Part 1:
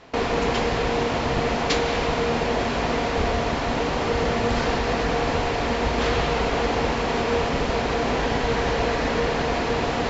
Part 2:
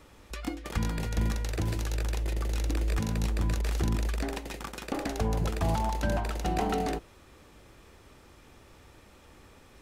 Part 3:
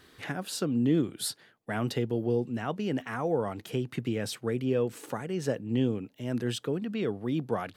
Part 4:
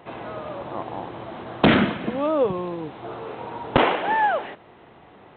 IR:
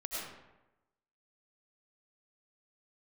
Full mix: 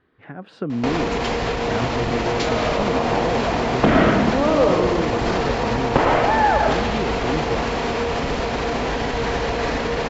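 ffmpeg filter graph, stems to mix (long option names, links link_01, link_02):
-filter_complex "[0:a]adelay=700,volume=-4.5dB[link_01];[2:a]lowpass=2300,volume=-5.5dB[link_02];[3:a]lowpass=2300,adelay=2200,volume=-4dB,asplit=2[link_03][link_04];[link_04]volume=-8.5dB[link_05];[link_02][link_03]amix=inputs=2:normalize=0,aemphasis=mode=reproduction:type=75kf,acompressor=threshold=-33dB:ratio=6,volume=0dB[link_06];[link_01]alimiter=level_in=2dB:limit=-24dB:level=0:latency=1:release=122,volume=-2dB,volume=0dB[link_07];[4:a]atrim=start_sample=2205[link_08];[link_05][link_08]afir=irnorm=-1:irlink=0[link_09];[link_06][link_07][link_09]amix=inputs=3:normalize=0,dynaudnorm=framelen=120:gausssize=7:maxgain=12dB"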